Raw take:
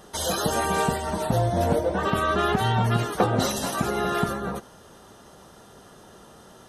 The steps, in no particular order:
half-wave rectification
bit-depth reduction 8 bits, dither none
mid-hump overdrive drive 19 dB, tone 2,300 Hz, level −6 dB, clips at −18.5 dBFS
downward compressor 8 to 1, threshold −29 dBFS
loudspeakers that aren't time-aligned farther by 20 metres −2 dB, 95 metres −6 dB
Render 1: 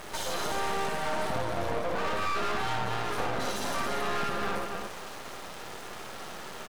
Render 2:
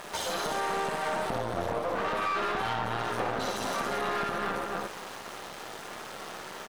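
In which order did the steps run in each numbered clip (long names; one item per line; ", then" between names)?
bit-depth reduction, then downward compressor, then loudspeakers that aren't time-aligned, then mid-hump overdrive, then half-wave rectification
bit-depth reduction, then loudspeakers that aren't time-aligned, then downward compressor, then half-wave rectification, then mid-hump overdrive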